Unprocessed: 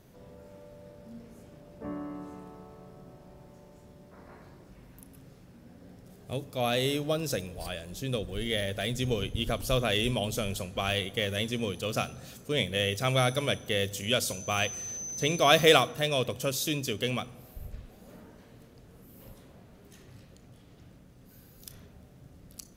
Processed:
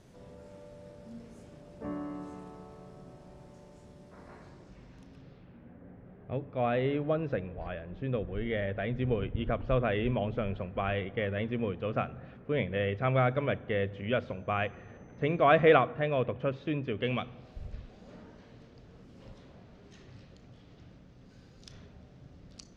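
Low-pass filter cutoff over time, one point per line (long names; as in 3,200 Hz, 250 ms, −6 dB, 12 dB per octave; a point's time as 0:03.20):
low-pass filter 24 dB per octave
0:04.28 9,600 Hz
0:05.14 5,400 Hz
0:05.80 2,100 Hz
0:16.89 2,100 Hz
0:17.59 5,700 Hz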